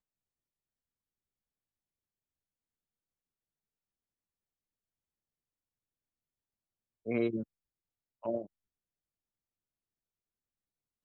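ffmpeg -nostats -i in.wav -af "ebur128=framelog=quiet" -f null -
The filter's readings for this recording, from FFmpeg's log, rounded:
Integrated loudness:
  I:         -36.3 LUFS
  Threshold: -46.9 LUFS
Loudness range:
  LRA:         6.4 LU
  Threshold: -61.6 LUFS
  LRA low:   -46.6 LUFS
  LRA high:  -40.2 LUFS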